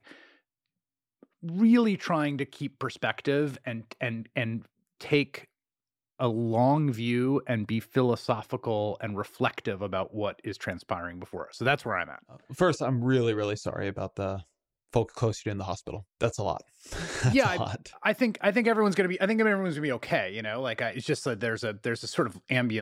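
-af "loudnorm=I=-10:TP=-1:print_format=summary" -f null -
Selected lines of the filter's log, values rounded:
Input Integrated:    -28.8 LUFS
Input True Peak:     -10.2 dBTP
Input LRA:             4.9 LU
Input Threshold:     -39.2 LUFS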